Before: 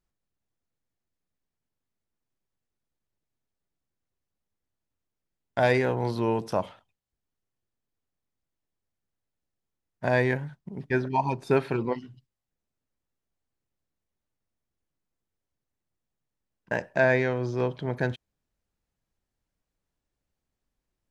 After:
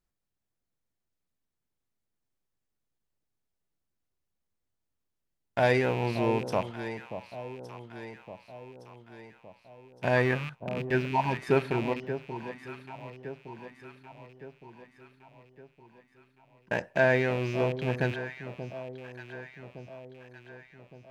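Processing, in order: rattle on loud lows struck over -40 dBFS, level -27 dBFS; 10.16–10.79 s: peaking EQ 1.2 kHz +14.5 dB 0.24 oct; echo whose repeats swap between lows and highs 582 ms, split 890 Hz, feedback 70%, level -9.5 dB; trim -1.5 dB

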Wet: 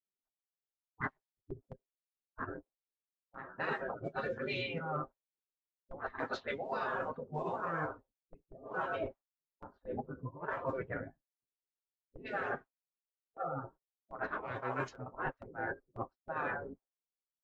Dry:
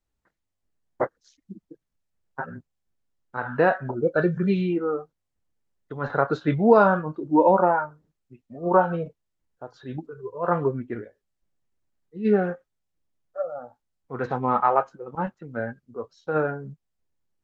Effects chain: level-controlled noise filter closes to 300 Hz, open at -16.5 dBFS; high-pass 52 Hz 6 dB/octave; gate with hold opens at -39 dBFS; spectral gate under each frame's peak -15 dB weak; bass shelf 69 Hz +11 dB; comb 7.5 ms, depth 40%; dynamic bell 520 Hz, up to +7 dB, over -53 dBFS, Q 1.9; reverse; compression 10:1, threshold -46 dBFS, peak gain reduction 23.5 dB; reverse; trim +11.5 dB

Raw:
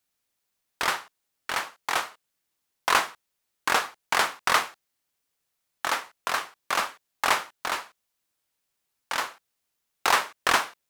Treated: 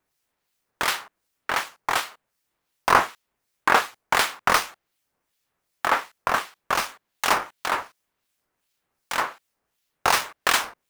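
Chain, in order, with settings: in parallel at -3.5 dB: decimation with a swept rate 8×, swing 100% 1.8 Hz; on the sum: harmonic tremolo 2.7 Hz, depth 70%, crossover 2.2 kHz; trim +3 dB

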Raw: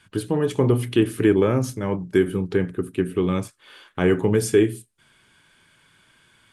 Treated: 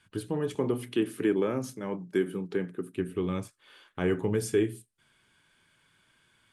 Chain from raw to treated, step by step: 0.55–2.96 s: high-pass 150 Hz 24 dB/octave; trim -8.5 dB

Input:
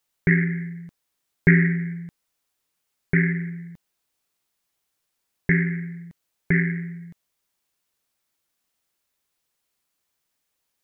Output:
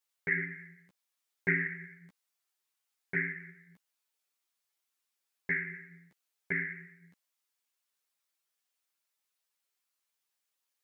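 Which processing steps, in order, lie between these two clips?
high-pass 800 Hz 6 dB/octave; three-phase chorus; trim -3.5 dB

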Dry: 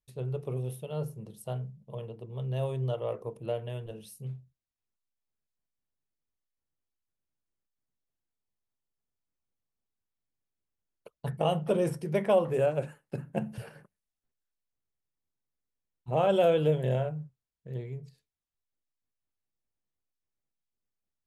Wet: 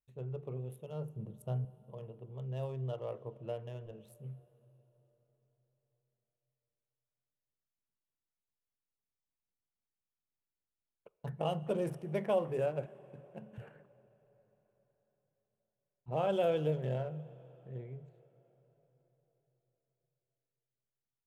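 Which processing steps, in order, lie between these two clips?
local Wiener filter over 9 samples; 1.16–1.65 s: bass shelf 320 Hz +9 dB; 12.86–13.53 s: feedback comb 490 Hz, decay 0.64 s, mix 70%; plate-style reverb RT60 4.5 s, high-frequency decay 0.8×, DRR 18 dB; trim -7 dB

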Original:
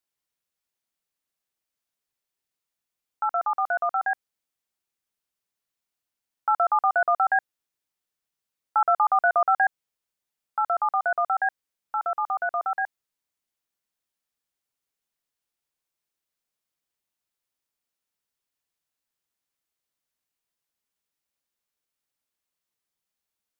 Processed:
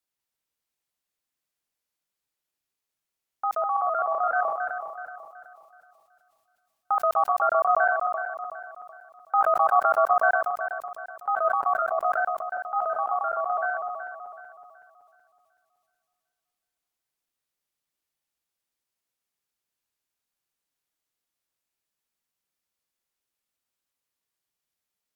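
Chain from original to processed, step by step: backward echo that repeats 176 ms, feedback 62%, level -5.5 dB; wide varispeed 0.938×; decay stretcher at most 43 dB/s; trim -1.5 dB

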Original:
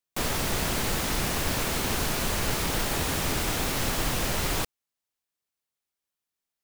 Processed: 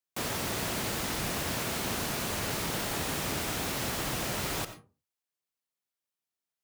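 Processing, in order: high-pass 85 Hz 12 dB/octave; on a send: tone controls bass +8 dB, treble -2 dB + reverberation RT60 0.35 s, pre-delay 50 ms, DRR 10.5 dB; on the sum: trim -4.5 dB

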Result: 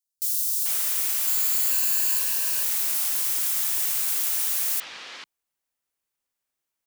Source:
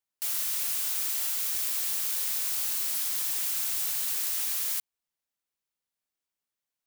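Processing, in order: 1.27–2.19 s: rippled EQ curve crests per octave 1.4, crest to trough 11 dB; three bands offset in time highs, lows, mids 170/440 ms, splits 170/4100 Hz; trim +5 dB

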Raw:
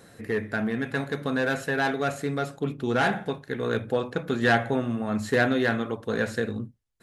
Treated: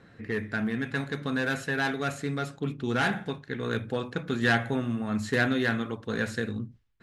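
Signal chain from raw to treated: level-controlled noise filter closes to 2.5 kHz, open at -22 dBFS; peaking EQ 600 Hz -7 dB 1.5 oct; reverse; upward compressor, threshold -46 dBFS; reverse

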